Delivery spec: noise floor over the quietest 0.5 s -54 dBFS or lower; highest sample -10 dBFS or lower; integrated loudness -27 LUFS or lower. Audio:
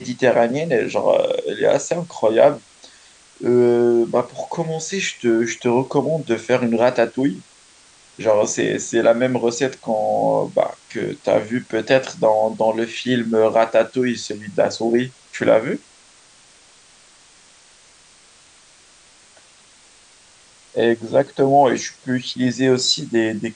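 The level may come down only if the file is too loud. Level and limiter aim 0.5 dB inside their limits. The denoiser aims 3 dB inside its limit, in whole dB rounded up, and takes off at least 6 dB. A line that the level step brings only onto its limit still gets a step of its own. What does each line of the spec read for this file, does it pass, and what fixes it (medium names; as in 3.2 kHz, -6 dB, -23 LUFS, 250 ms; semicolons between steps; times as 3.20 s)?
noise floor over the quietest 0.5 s -50 dBFS: fail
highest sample -2.0 dBFS: fail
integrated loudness -19.0 LUFS: fail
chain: trim -8.5 dB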